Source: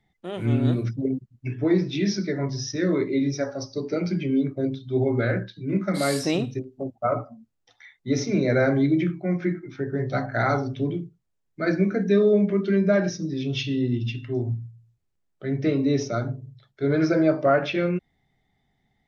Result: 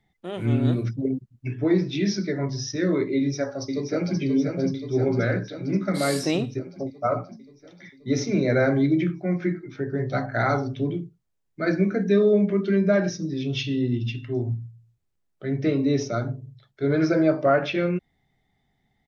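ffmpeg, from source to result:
ffmpeg -i in.wav -filter_complex "[0:a]asplit=2[link_01][link_02];[link_02]afade=type=in:start_time=3.15:duration=0.01,afade=type=out:start_time=4.18:duration=0.01,aecho=0:1:530|1060|1590|2120|2650|3180|3710|4240|4770|5300|5830:0.501187|0.350831|0.245582|0.171907|0.120335|0.0842345|0.0589642|0.0412749|0.0288924|0.0202247|0.0141573[link_03];[link_01][link_03]amix=inputs=2:normalize=0" out.wav

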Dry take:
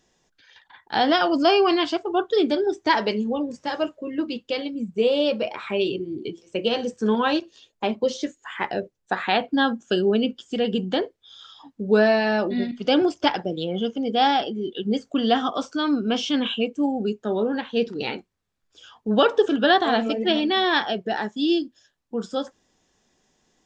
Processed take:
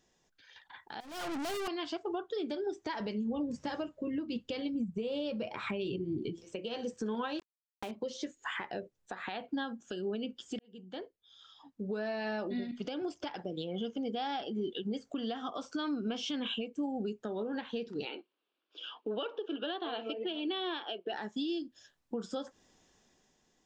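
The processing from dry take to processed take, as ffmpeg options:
ffmpeg -i in.wav -filter_complex "[0:a]asettb=1/sr,asplit=3[link_01][link_02][link_03];[link_01]atrim=end=1.004[link_04];[link_02]atrim=start=1:end=1.68,asetpts=PTS-STARTPTS,afade=type=in:duration=0.004:curve=qsin,afade=type=out:start_time=0.676:duration=0.004:curve=qsin,aeval=exprs='(tanh(63.1*val(0)+0.15)-tanh(0.15))/63.1':channel_layout=same[link_05];[link_03]atrim=start=1.676[link_06];[link_04][link_05]acrossfade=duration=0.004:curve1=hsin:curve2=qsin[link_07];[link_07][link_06]acrossfade=duration=0.004:curve1=qsin:curve2=hsin,asettb=1/sr,asplit=3[link_08][link_09][link_10];[link_08]atrim=end=3.004[link_11];[link_09]atrim=start=3:end=6.45,asetpts=PTS-STARTPTS,afade=type=in:duration=0.004:curve=qsin,afade=type=out:start_time=3.446:duration=0.004:curve=qsin,bass=frequency=250:gain=11,treble=frequency=4000:gain=0[link_12];[link_10]atrim=start=6.446[link_13];[link_11][link_12]acrossfade=duration=0.004:curve1=hsin:curve2=qsin[link_14];[link_14][link_13]acrossfade=duration=0.004:curve1=qsin:curve2=hsin,asettb=1/sr,asplit=3[link_15][link_16][link_17];[link_15]atrim=end=7.394[link_18];[link_16]atrim=start=7.39:end=7.91,asetpts=PTS-STARTPTS,afade=type=in:duration=0.004:curve=qsin,afade=type=out:start_time=0.516:duration=0.004:curve=qsin,acrusher=bits=4:mix=0:aa=0.5[link_19];[link_17]atrim=start=7.906[link_20];[link_18][link_19]acrossfade=duration=0.004:curve1=hsin:curve2=qsin[link_21];[link_21][link_20]acrossfade=duration=0.004:curve1=qsin:curve2=hsin,asettb=1/sr,asplit=3[link_22][link_23][link_24];[link_22]atrim=end=18.054[link_25];[link_23]atrim=start=18.05:end=21.13,asetpts=PTS-STARTPTS,afade=type=in:duration=0.004:curve=qsin,afade=type=out:start_time=3.076:duration=0.004:curve=qsin,highpass=frequency=310:width=0.5412,highpass=frequency=310:width=1.3066,equalizer=frequency=320:width_type=q:width=4:gain=6,equalizer=frequency=780:width_type=q:width=4:gain=-3,equalizer=frequency=1900:width_type=q:width=4:gain=-9,equalizer=frequency=2900:width_type=q:width=4:gain=8,lowpass=frequency=4000:width=0.5412,lowpass=frequency=4000:width=1.3066[link_26];[link_24]atrim=start=21.126[link_27];[link_25][link_26]acrossfade=duration=0.004:curve1=hsin:curve2=qsin[link_28];[link_28][link_27]acrossfade=duration=0.004:curve1=qsin:curve2=hsin,asplit=2[link_29][link_30];[link_29]atrim=end=10.59,asetpts=PTS-STARTPTS,afade=type=out:start_time=10.586:duration=0.004:curve=hsin[link_31];[link_30]atrim=start=10.59,asetpts=PTS-STARTPTS,afade=type=in:duration=3.7[link_32];[link_31][link_32]concat=n=2:v=0:a=1,acompressor=threshold=-32dB:ratio=6,alimiter=level_in=3.5dB:limit=-24dB:level=0:latency=1:release=230,volume=-3.5dB,dynaudnorm=framelen=120:gausssize=13:maxgain=7dB,volume=-6.5dB" out.wav

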